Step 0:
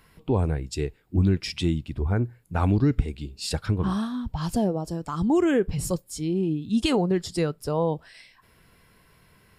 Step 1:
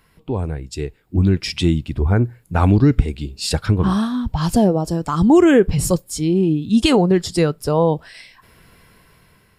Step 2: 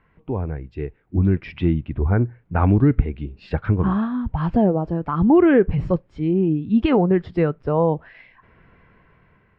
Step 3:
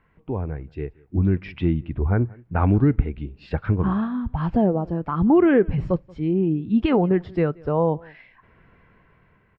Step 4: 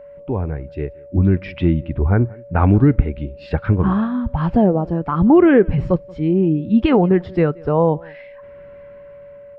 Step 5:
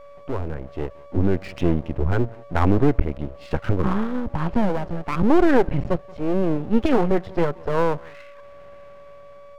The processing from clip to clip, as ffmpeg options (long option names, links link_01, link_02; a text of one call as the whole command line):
ffmpeg -i in.wav -af "dynaudnorm=framelen=520:gausssize=5:maxgain=11.5dB" out.wav
ffmpeg -i in.wav -af "lowpass=frequency=2300:width=0.5412,lowpass=frequency=2300:width=1.3066,volume=-2.5dB" out.wav
ffmpeg -i in.wav -filter_complex "[0:a]asplit=2[link_01][link_02];[link_02]adelay=180.8,volume=-25dB,highshelf=frequency=4000:gain=-4.07[link_03];[link_01][link_03]amix=inputs=2:normalize=0,volume=-2dB" out.wav
ffmpeg -i in.wav -af "aeval=exprs='val(0)+0.00794*sin(2*PI*570*n/s)':channel_layout=same,volume=5dB" out.wav
ffmpeg -i in.wav -af "aeval=exprs='max(val(0),0)':channel_layout=same" out.wav